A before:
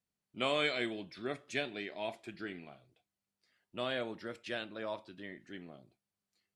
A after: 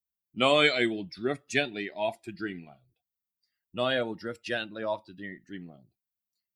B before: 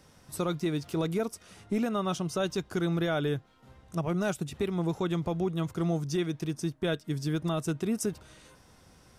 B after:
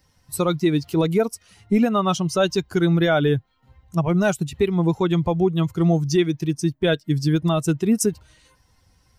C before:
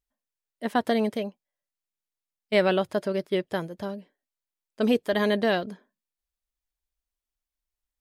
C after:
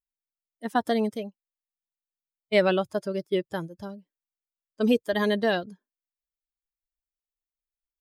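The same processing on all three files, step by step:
spectral dynamics exaggerated over time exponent 1.5
normalise the peak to −9 dBFS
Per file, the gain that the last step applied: +11.5, +12.5, +2.0 decibels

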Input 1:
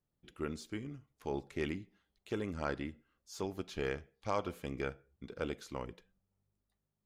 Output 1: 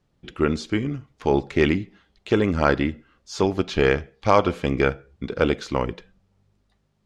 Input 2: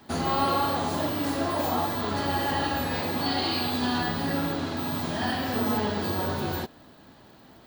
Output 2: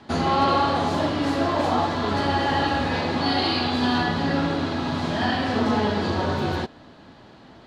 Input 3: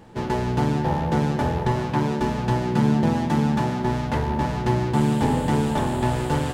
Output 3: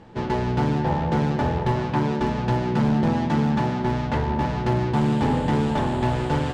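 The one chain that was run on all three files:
low-pass filter 5,200 Hz 12 dB per octave
gain into a clipping stage and back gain 15.5 dB
loudness normalisation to −23 LKFS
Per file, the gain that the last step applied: +17.5, +5.0, +0.5 decibels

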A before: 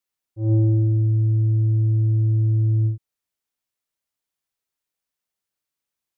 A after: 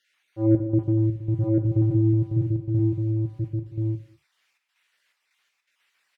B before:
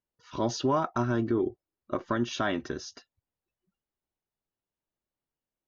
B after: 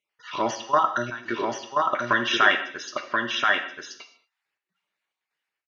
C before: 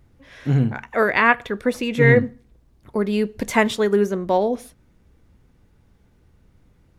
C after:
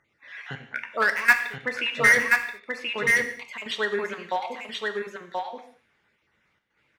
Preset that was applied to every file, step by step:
time-frequency cells dropped at random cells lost 30%
resonant band-pass 2,100 Hz, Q 1.7
in parallel at −4 dB: wave folding −23.5 dBFS
on the sum: gate pattern "xxx.xx.x.xx" 82 BPM −12 dB
on a send: single-tap delay 1,030 ms −3 dB
on the sum: reverb whose tail is shaped and stops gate 250 ms falling, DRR 6.5 dB
loudness normalisation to −24 LKFS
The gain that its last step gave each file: +21.0, +14.5, +2.5 decibels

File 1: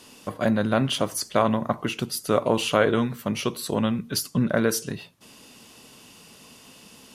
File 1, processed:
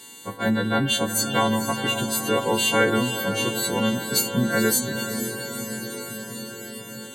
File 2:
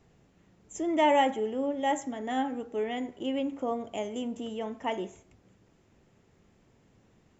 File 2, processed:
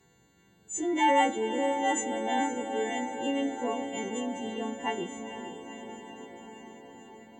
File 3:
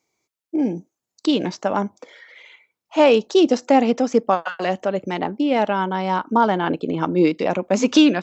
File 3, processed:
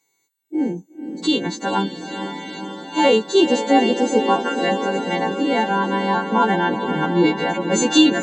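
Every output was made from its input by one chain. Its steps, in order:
every partial snapped to a pitch grid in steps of 2 semitones
notch comb filter 620 Hz
feedback delay with all-pass diffusion 483 ms, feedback 72%, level −8.5 dB
level +1 dB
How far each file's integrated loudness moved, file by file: +1.5, +0.5, +0.5 LU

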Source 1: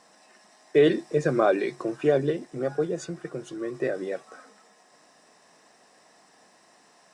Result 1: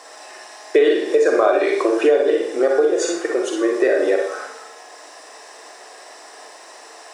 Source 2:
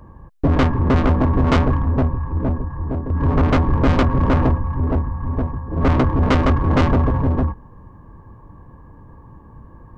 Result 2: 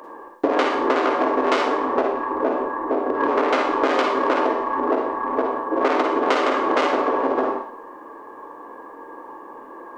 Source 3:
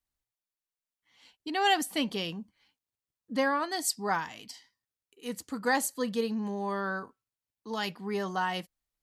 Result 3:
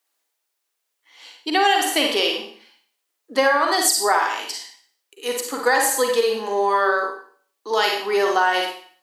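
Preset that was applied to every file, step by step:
inverse Chebyshev high-pass filter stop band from 170 Hz, stop band 40 dB
four-comb reverb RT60 0.51 s, DRR 1.5 dB
downward compressor 5 to 1, threshold −28 dBFS
normalise the peak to −3 dBFS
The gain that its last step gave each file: +15.0, +11.0, +14.0 decibels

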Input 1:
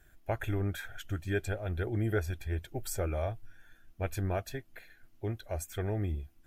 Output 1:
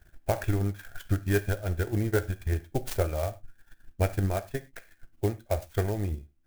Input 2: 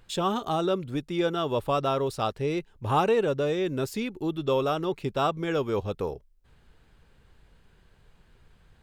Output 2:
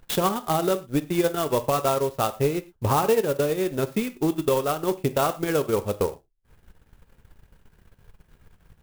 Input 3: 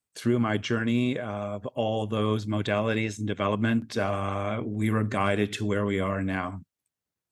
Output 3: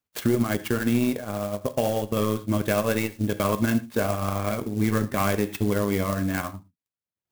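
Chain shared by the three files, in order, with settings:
high-shelf EQ 3,900 Hz −2.5 dB
transient designer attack +9 dB, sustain −12 dB
reverb whose tail is shaped and stops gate 140 ms falling, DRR 10 dB
boost into a limiter +12.5 dB
converter with an unsteady clock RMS 0.045 ms
normalise the peak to −12 dBFS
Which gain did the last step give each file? −11.0, −11.0, −11.0 decibels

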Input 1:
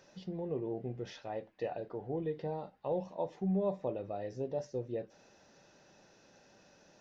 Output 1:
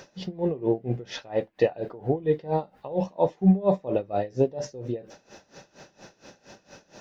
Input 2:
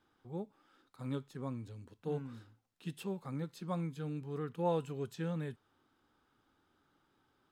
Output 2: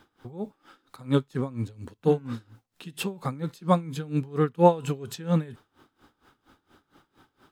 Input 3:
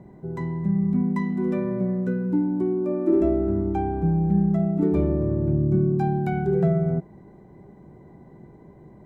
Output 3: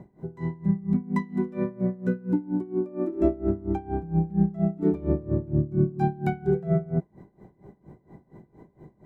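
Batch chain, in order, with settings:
tremolo with a sine in dB 4.3 Hz, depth 21 dB
loudness normalisation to −27 LKFS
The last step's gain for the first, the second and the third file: +17.0, +18.0, +2.0 decibels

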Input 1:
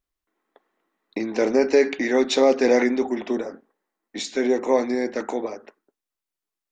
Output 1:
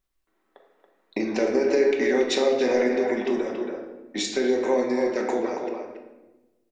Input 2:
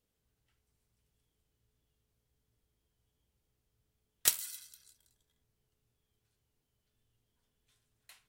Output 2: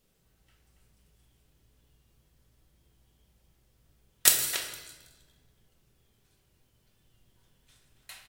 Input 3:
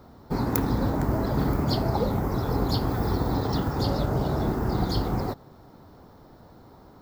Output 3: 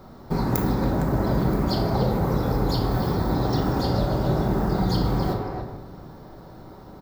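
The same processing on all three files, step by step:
far-end echo of a speakerphone 280 ms, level −7 dB
downward compressor 2.5 to 1, threshold −27 dBFS
rectangular room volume 590 cubic metres, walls mixed, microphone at 1.1 metres
loudness normalisation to −24 LKFS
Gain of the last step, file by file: +2.0, +10.0, +3.5 decibels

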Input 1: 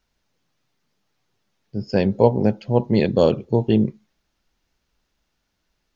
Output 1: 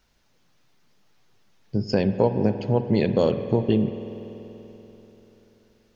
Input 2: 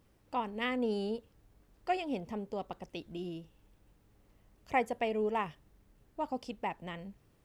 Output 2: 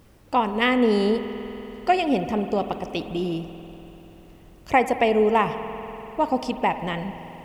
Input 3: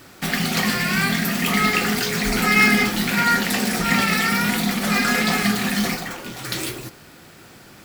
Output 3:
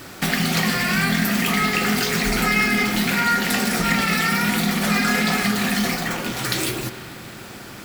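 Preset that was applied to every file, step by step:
downward compressor 2.5 to 1, threshold −28 dBFS
spring reverb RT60 3.8 s, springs 48 ms, chirp 40 ms, DRR 9.5 dB
normalise the peak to −6 dBFS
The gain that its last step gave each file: +6.0, +14.0, +7.0 decibels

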